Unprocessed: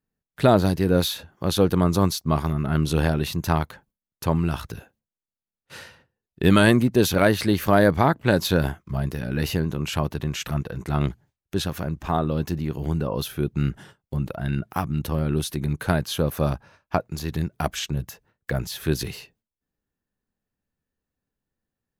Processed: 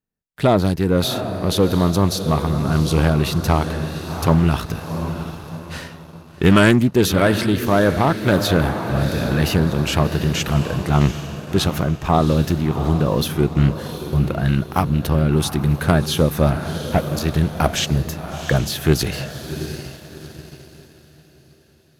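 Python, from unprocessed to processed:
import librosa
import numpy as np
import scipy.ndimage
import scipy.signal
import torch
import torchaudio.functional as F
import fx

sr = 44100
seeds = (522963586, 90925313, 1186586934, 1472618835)

y = fx.cvsd(x, sr, bps=16000, at=(16.51, 17.06))
y = fx.echo_diffused(y, sr, ms=719, feedback_pct=45, wet_db=-10.0)
y = fx.leveller(y, sr, passes=1)
y = fx.rider(y, sr, range_db=3, speed_s=2.0)
y = fx.doppler_dist(y, sr, depth_ms=0.21)
y = F.gain(torch.from_numpy(y), 1.5).numpy()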